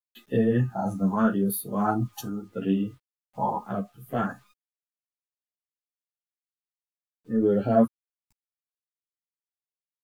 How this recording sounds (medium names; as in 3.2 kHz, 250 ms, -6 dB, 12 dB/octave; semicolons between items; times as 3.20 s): phasing stages 4, 0.82 Hz, lowest notch 410–1000 Hz; a quantiser's noise floor 12-bit, dither none; random-step tremolo; a shimmering, thickened sound